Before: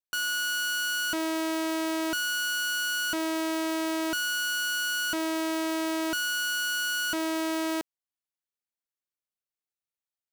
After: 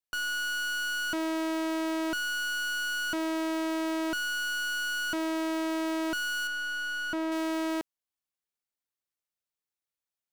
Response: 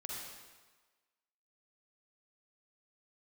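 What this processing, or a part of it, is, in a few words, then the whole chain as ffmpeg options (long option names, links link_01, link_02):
saturation between pre-emphasis and de-emphasis: -filter_complex "[0:a]highshelf=frequency=4700:gain=11.5,asoftclip=type=tanh:threshold=-21.5dB,highshelf=frequency=4700:gain=-11.5,asettb=1/sr,asplit=3[link_01][link_02][link_03];[link_01]atrim=end=6.474[link_04];[link_02]atrim=start=6.47:end=7.32,asetpts=PTS-STARTPTS,afade=type=in:duration=0.004:curve=qsin,afade=type=out:start_time=0.846:duration=0.004:curve=qsin,highshelf=frequency=3700:gain=-10[link_05];[link_03]atrim=start=7.316[link_06];[link_04][link_05]acrossfade=duration=0.004:curve1=hsin:curve2=qsin[link_07];[link_07][link_06]acrossfade=duration=0.004:curve1=qsin:curve2=hsin"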